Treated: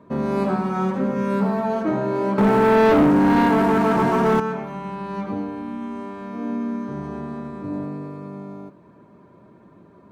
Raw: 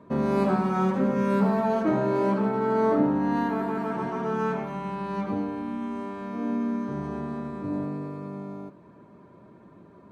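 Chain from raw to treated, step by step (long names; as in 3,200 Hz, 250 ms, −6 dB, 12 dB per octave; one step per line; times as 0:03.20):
0:02.38–0:04.40: leveller curve on the samples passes 3
level +1.5 dB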